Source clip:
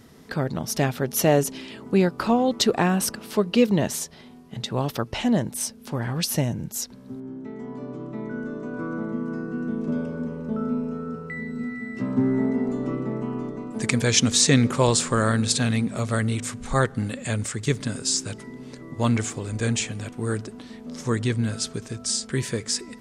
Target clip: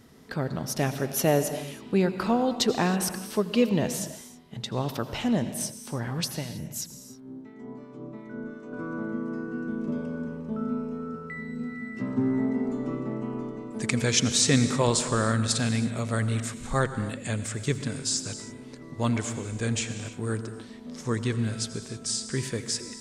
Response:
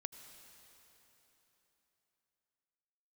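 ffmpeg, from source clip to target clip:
-filter_complex "[0:a]asettb=1/sr,asplit=3[link_01][link_02][link_03];[link_01]atrim=end=6.284[link_04];[link_02]atrim=start=6.28:end=8.73,asetpts=PTS-STARTPTS,afade=type=in:duration=0.004:curve=qsin,afade=type=out:start_time=2.446:duration=0.004:curve=qsin,acrossover=split=1200[link_05][link_06];[link_05]aeval=exprs='val(0)*(1-0.7/2+0.7/2*cos(2*PI*2.8*n/s))':channel_layout=same[link_07];[link_06]aeval=exprs='val(0)*(1-0.7/2-0.7/2*cos(2*PI*2.8*n/s))':channel_layout=same[link_08];[link_07][link_08]amix=inputs=2:normalize=0[link_09];[link_03]atrim=start=8.726[link_10];[link_04][link_09]acrossfade=duration=0.004:curve1=hsin:curve2=qsin[link_11];[link_11][link_10]acrossfade=duration=0.004:curve1=qsin:curve2=hsin[link_12];[1:a]atrim=start_sample=2205,afade=type=out:start_time=0.38:duration=0.01,atrim=end_sample=17199[link_13];[link_12][link_13]afir=irnorm=-1:irlink=0"

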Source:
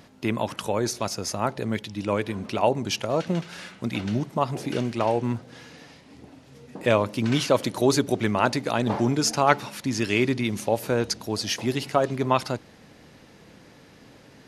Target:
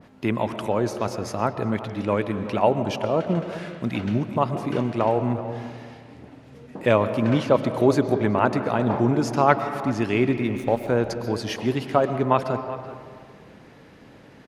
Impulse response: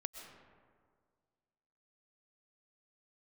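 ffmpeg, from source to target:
-filter_complex "[0:a]asettb=1/sr,asplit=3[link_01][link_02][link_03];[link_01]atrim=end=7.294[link_04];[link_02]atrim=start=7.29:end=7.69,asetpts=PTS-STARTPTS,afade=type=in:duration=0.004:curve=qsin,afade=type=out:start_time=0.396:duration=0.004:curve=qsin,highshelf=frequency=9600:gain=-8.5[link_05];[link_03]atrim=start=7.686[link_06];[link_04][link_05]acrossfade=duration=0.004:curve1=hsin:curve2=qsin[link_07];[link_07][link_06]acrossfade=duration=0.004:curve1=qsin:curve2=hsin,asettb=1/sr,asplit=3[link_08][link_09][link_10];[link_08]atrim=end=10.374[link_11];[link_09]atrim=start=10.37:end=10.88,asetpts=PTS-STARTPTS,afade=type=in:duration=0.004:curve=qsin,afade=type=out:start_time=0.506:duration=0.004:curve=qsin,aeval=exprs='sgn(val(0))*max(abs(val(0))-0.01,0)':channel_layout=same[link_12];[link_10]atrim=start=10.876[link_13];[link_11][link_12]acrossfade=duration=0.004:curve1=hsin:curve2=qsin[link_14];[link_14][link_13]acrossfade=duration=0.004:curve1=qsin:curve2=hsin,asplit=2[link_15][link_16];[link_16]adelay=380,highpass=300,lowpass=3400,asoftclip=type=hard:threshold=-10dB,volume=-15dB[link_17];[link_15][link_17]amix=inputs=2:normalize=0,asplit=2[link_18][link_19];[1:a]atrim=start_sample=2205,lowpass=3400[link_20];[link_19][link_20]afir=irnorm=-1:irlink=0,volume=4.5dB[link_21];[link_18][link_21]amix=inputs=2:normalize=0,adynamicequalizer=threshold=0.0251:dfrequency=1800:dqfactor=0.7:tfrequency=1800:tqfactor=0.7:attack=5:release=100:ratio=0.375:range=3.5:mode=cutabove:tftype=highshelf,volume=-4.5dB"

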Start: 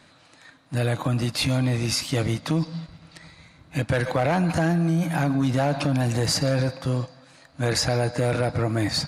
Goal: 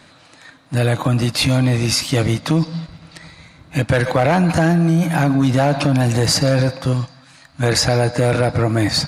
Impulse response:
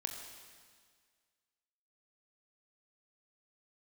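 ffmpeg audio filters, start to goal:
-filter_complex "[0:a]asettb=1/sr,asplit=3[link_01][link_02][link_03];[link_01]atrim=end=6.934[link_04];[link_02]atrim=start=6.93:end=7.63,asetpts=PTS-STARTPTS,afade=type=in:duration=0.004:curve=qsin,afade=type=out:start_time=0.696:duration=0.004:curve=qsin,equalizer=frequency=460:width_type=o:width=0.95:gain=-13[link_05];[link_03]atrim=start=7.626[link_06];[link_04][link_05]acrossfade=duration=0.004:curve1=hsin:curve2=qsin[link_07];[link_07][link_06]acrossfade=duration=0.004:curve1=qsin:curve2=hsin,volume=7dB"

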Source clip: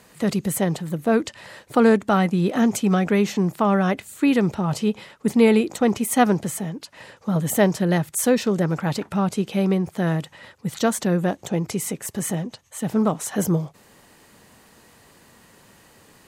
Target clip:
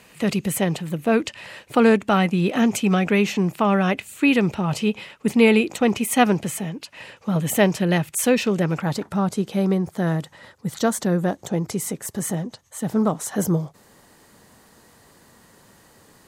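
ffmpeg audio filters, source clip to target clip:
ffmpeg -i in.wav -af "asetnsamples=nb_out_samples=441:pad=0,asendcmd='8.82 equalizer g -5.5',equalizer=frequency=2600:width=2.5:gain=9" out.wav

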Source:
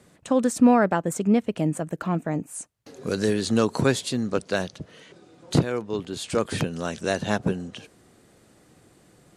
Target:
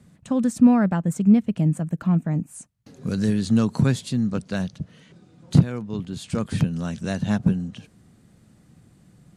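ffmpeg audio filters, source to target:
ffmpeg -i in.wav -af "lowshelf=frequency=270:width_type=q:width=1.5:gain=10,volume=-5dB" out.wav

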